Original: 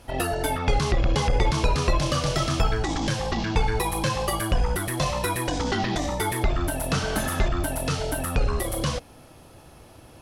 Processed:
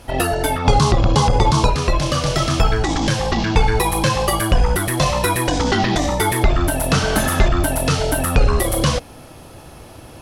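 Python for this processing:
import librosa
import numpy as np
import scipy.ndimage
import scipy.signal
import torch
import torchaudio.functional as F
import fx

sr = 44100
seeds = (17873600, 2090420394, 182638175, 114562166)

y = fx.graphic_eq(x, sr, hz=(125, 250, 1000, 2000, 4000, 8000), db=(6, 4, 9, -6, 4, 5), at=(0.65, 1.7))
y = fx.rider(y, sr, range_db=10, speed_s=2.0)
y = F.gain(torch.from_numpy(y), 6.5).numpy()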